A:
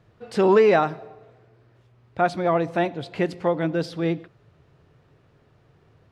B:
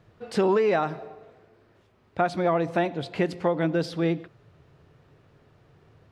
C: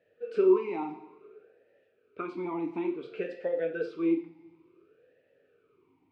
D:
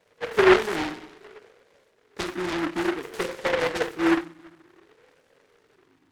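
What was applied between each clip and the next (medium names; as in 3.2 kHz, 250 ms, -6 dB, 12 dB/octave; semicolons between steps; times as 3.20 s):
hum notches 60/120 Hz; compression 6:1, threshold -20 dBFS, peak gain reduction 8 dB; trim +1 dB
reverberation, pre-delay 3 ms, DRR 2.5 dB; talking filter e-u 0.57 Hz; trim +2 dB
delay time shaken by noise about 1.2 kHz, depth 0.22 ms; trim +5.5 dB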